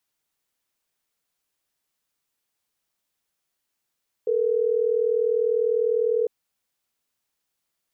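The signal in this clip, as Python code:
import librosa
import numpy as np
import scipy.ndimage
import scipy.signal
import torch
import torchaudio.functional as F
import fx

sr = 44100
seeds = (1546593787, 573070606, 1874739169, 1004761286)

y = fx.call_progress(sr, length_s=3.12, kind='ringback tone', level_db=-22.0)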